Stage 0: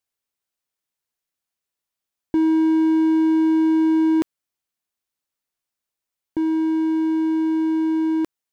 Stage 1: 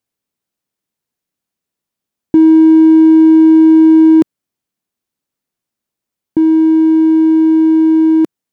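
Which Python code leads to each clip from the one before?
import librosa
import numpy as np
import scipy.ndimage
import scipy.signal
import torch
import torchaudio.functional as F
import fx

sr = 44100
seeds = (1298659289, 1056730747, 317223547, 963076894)

y = fx.peak_eq(x, sr, hz=200.0, db=11.5, octaves=2.5)
y = F.gain(torch.from_numpy(y), 2.5).numpy()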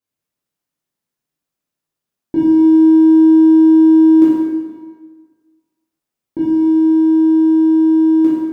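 y = fx.rev_plate(x, sr, seeds[0], rt60_s=1.5, hf_ratio=0.8, predelay_ms=0, drr_db=-9.5)
y = F.gain(torch.from_numpy(y), -10.5).numpy()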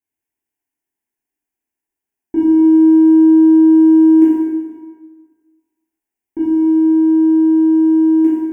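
y = fx.fixed_phaser(x, sr, hz=820.0, stages=8)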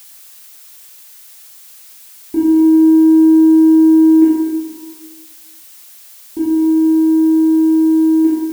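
y = fx.dmg_noise_colour(x, sr, seeds[1], colour='blue', level_db=-40.0)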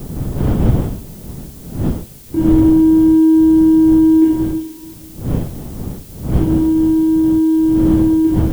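y = fx.dmg_wind(x, sr, seeds[2], corner_hz=190.0, level_db=-19.0)
y = fx.dynamic_eq(y, sr, hz=3200.0, q=4.8, threshold_db=-55.0, ratio=4.0, max_db=7)
y = F.gain(torch.from_numpy(y), -1.5).numpy()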